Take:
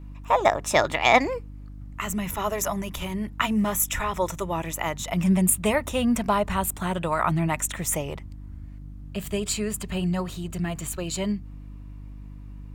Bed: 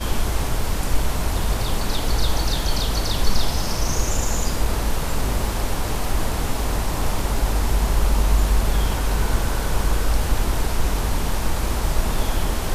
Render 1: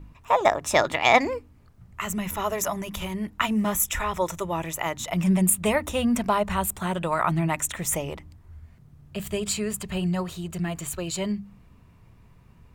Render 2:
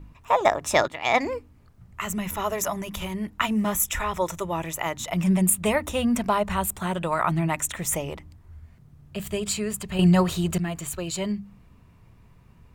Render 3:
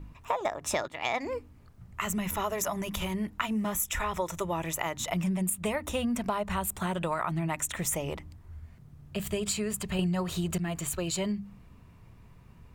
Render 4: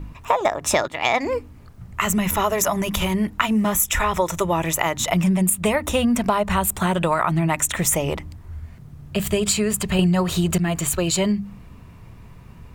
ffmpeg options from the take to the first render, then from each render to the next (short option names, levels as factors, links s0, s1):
-af "bandreject=f=50:t=h:w=4,bandreject=f=100:t=h:w=4,bandreject=f=150:t=h:w=4,bandreject=f=200:t=h:w=4,bandreject=f=250:t=h:w=4,bandreject=f=300:t=h:w=4"
-filter_complex "[0:a]asplit=4[s0][s1][s2][s3];[s0]atrim=end=0.88,asetpts=PTS-STARTPTS,afade=t=out:st=0.876:d=0.004:c=hsin:silence=0.211349[s4];[s1]atrim=start=0.88:end=9.992,asetpts=PTS-STARTPTS,afade=t=in:d=0.47:silence=0.211349[s5];[s2]atrim=start=9.988:end=10.582,asetpts=PTS-STARTPTS,volume=2.66[s6];[s3]atrim=start=10.578[s7];[s4][s5]concat=n=2:v=0:a=1[s8];[s8][s6]acrossfade=d=0.004:c1=hsin:c2=hsin[s9];[s9][s7]acrossfade=d=0.004:c1=hsin:c2=hsin"
-af "acompressor=threshold=0.0447:ratio=6"
-af "volume=3.35"